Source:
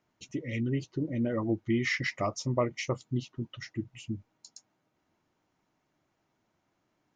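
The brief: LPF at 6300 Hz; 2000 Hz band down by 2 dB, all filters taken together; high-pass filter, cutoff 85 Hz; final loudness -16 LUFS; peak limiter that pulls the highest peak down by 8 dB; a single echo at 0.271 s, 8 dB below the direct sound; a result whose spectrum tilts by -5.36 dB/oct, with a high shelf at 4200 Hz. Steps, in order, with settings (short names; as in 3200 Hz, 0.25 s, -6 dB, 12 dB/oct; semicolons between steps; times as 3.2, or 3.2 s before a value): HPF 85 Hz; LPF 6300 Hz; bell 2000 Hz -3 dB; high shelf 4200 Hz +4.5 dB; limiter -23 dBFS; echo 0.271 s -8 dB; gain +18.5 dB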